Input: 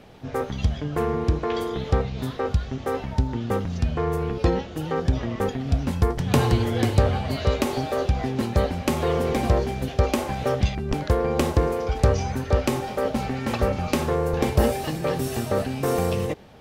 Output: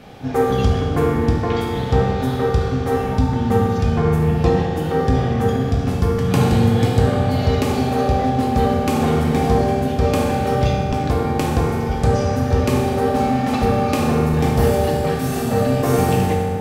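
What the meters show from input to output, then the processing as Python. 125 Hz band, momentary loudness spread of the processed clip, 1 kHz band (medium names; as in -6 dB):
+6.5 dB, 3 LU, +8.0 dB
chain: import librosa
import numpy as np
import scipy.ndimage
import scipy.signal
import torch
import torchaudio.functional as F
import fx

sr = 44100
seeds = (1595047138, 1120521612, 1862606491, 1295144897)

y = fx.rider(x, sr, range_db=10, speed_s=2.0)
y = fx.notch(y, sr, hz=520.0, q=12.0)
y = fx.rev_fdn(y, sr, rt60_s=2.6, lf_ratio=1.2, hf_ratio=0.55, size_ms=12.0, drr_db=-4.0)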